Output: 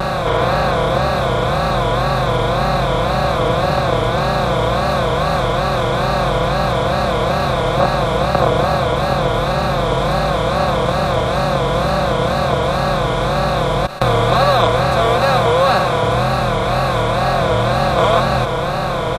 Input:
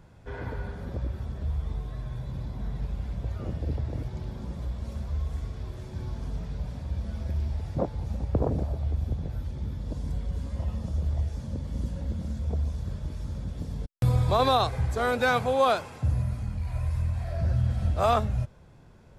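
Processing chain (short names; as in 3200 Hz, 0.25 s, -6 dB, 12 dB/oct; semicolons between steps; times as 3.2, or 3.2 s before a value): per-bin compression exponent 0.2; comb 5.7 ms, depth 90%; wow and flutter 130 cents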